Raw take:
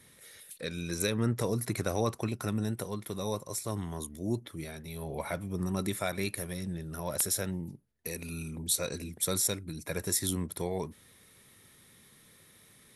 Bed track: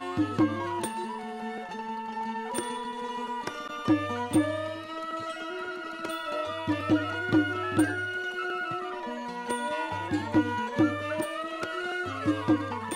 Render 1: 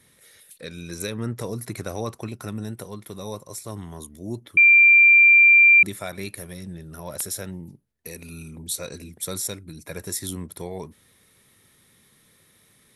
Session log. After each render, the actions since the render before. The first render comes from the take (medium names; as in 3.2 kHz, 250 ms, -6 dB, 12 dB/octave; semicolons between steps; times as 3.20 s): 4.57–5.83 s: bleep 2.37 kHz -9.5 dBFS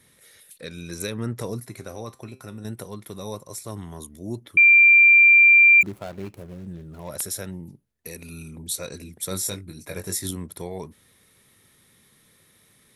1.60–2.65 s: feedback comb 130 Hz, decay 0.31 s; 5.81–7.09 s: median filter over 25 samples; 9.29–10.31 s: doubling 21 ms -5 dB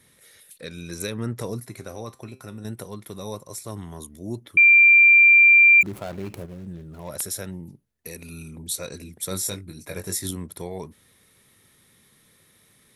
5.85–6.46 s: level flattener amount 50%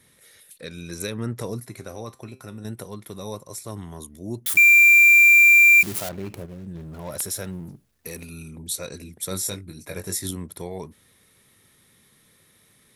4.46–6.09 s: zero-crossing glitches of -18 dBFS; 6.75–8.25 s: companding laws mixed up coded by mu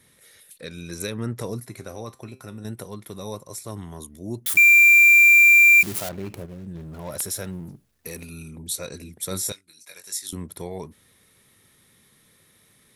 9.52–10.33 s: band-pass filter 5.9 kHz, Q 0.65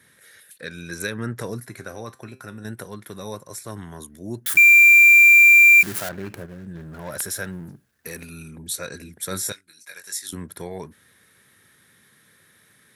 high-pass 80 Hz; peaking EQ 1.6 kHz +12 dB 0.44 oct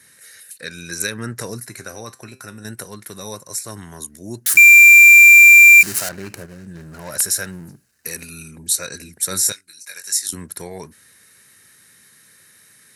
peaking EQ 7.2 kHz +11.5 dB 2.5 oct; band-stop 3.4 kHz, Q 6.1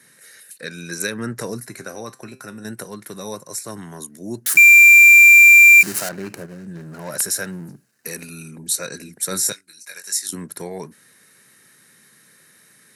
high-pass 130 Hz 24 dB/octave; tilt shelf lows +3 dB, about 1.4 kHz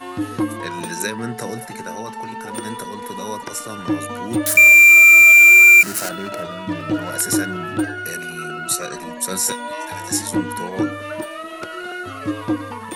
add bed track +2.5 dB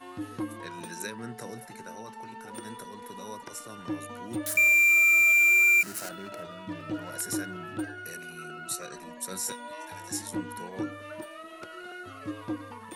trim -12.5 dB